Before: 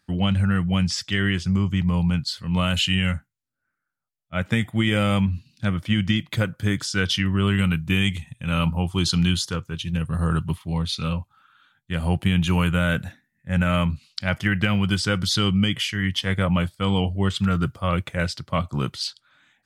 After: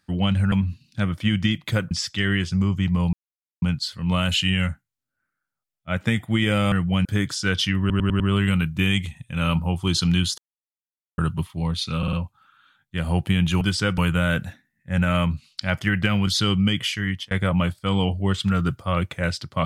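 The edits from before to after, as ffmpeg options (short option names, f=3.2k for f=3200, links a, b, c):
-filter_complex "[0:a]asplit=19[a][b][c][d][e][f][g][h][i][j][k][l][m][n][o][p][q][r][s];[a]atrim=end=0.522[t];[b]atrim=start=5.168:end=6.562[u];[c]atrim=start=0.848:end=2.07,asetpts=PTS-STARTPTS,afade=t=out:st=1.218:d=0.004:c=hsin,apad=pad_dur=0.49[v];[d]atrim=start=2.07:end=5.172,asetpts=PTS-STARTPTS,afade=t=in:d=0.004:c=hsin[w];[e]atrim=start=0.518:end=0.852[x];[f]atrim=start=6.558:end=7.412[y];[g]atrim=start=7.308:end=7.412[z];[h]atrim=start=7.308:end=7.412[aa];[i]atrim=start=7.308:end=7.412[ab];[j]atrim=start=7.308:end=9.49,asetpts=PTS-STARTPTS,afade=t=out:st=2.178:d=0.004:c=hsin[ac];[k]atrim=start=9.49:end=10.29,asetpts=PTS-STARTPTS,volume=0[ad];[l]atrim=start=10.29:end=11.142,asetpts=PTS-STARTPTS,afade=t=in:d=0.004:c=hsin[ae];[m]atrim=start=11.088:end=11.142[af];[n]atrim=start=11.088:end=11.142[ag];[o]atrim=start=11.088:end=12.572[ah];[p]atrim=start=14.858:end=15.232[ai];[q]atrim=start=12.568:end=14.862[aj];[r]atrim=start=15.228:end=16.27,asetpts=PTS-STARTPTS,afade=t=out:st=0.692:d=0.35:c=qsin[ak];[s]atrim=start=16.27,asetpts=PTS-STARTPTS,afade=t=in:d=0.004:c=hsin[al];[t][u]acrossfade=d=0.004:c1=hsin:c2=hsin[am];[v][w]concat=n=2:v=0:a=1[an];[am][an]acrossfade=d=0.004:c1=hsin:c2=hsin[ao];[ao][x]acrossfade=d=0.004:c1=hsin:c2=hsin[ap];[ap][y]acrossfade=d=0.004:c1=hsin:c2=hsin[aq];[aq][z]acrossfade=d=0.004:c1=hsin:c2=hsin[ar];[ar][aa]acrossfade=d=0.004:c1=hsin:c2=hsin[as];[as][ab]acrossfade=d=0.004:c1=hsin:c2=hsin[at];[ac][ad][ae]concat=n=3:v=0:a=1[au];[at][au]acrossfade=d=0.004:c1=hsin:c2=hsin[av];[av][af]acrossfade=d=0.004:c1=hsin:c2=hsin[aw];[aw][ag]acrossfade=d=0.004:c1=hsin:c2=hsin[ax];[ax][ah]acrossfade=d=0.004:c1=hsin:c2=hsin[ay];[ay][ai]acrossfade=d=0.004:c1=hsin:c2=hsin[az];[az][aj]acrossfade=d=0.004:c1=hsin:c2=hsin[ba];[ak][al]concat=n=2:v=0:a=1[bb];[ba][bb]acrossfade=d=0.004:c1=hsin:c2=hsin"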